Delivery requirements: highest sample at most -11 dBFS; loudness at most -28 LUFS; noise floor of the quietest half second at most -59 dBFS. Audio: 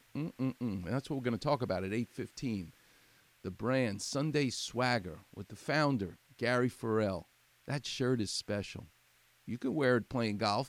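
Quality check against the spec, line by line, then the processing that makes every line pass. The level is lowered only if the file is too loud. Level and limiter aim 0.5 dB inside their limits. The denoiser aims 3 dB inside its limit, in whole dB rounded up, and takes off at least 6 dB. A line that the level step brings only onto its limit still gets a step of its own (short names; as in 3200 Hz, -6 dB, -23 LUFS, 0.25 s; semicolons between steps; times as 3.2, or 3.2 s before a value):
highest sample -15.5 dBFS: OK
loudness -35.0 LUFS: OK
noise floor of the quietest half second -68 dBFS: OK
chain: none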